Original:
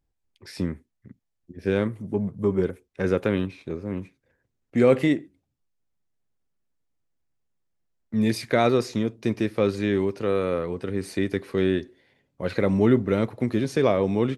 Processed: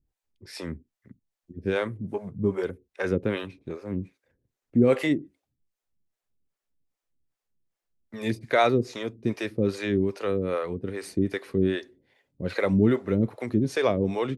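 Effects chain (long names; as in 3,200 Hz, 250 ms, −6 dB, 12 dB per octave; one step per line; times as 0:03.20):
two-band tremolo in antiphase 2.5 Hz, depth 100%, crossover 430 Hz
level +3 dB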